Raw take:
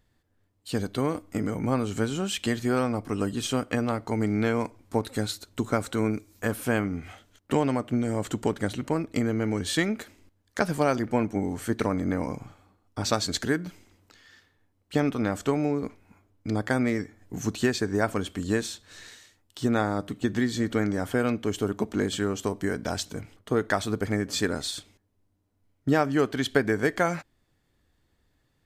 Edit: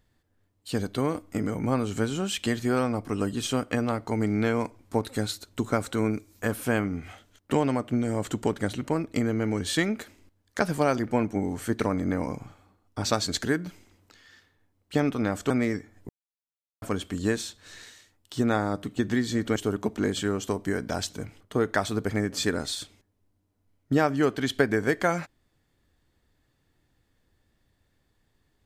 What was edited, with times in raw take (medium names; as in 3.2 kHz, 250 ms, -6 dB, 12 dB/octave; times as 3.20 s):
15.50–16.75 s: delete
17.34–18.07 s: mute
20.81–21.52 s: delete